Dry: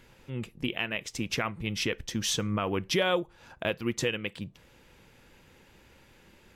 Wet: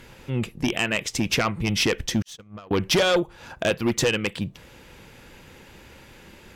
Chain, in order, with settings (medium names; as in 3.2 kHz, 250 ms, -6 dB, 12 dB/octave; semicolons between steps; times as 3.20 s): Chebyshev shaper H 5 -7 dB, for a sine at -13 dBFS; 2.22–2.71 s: gate -17 dBFS, range -59 dB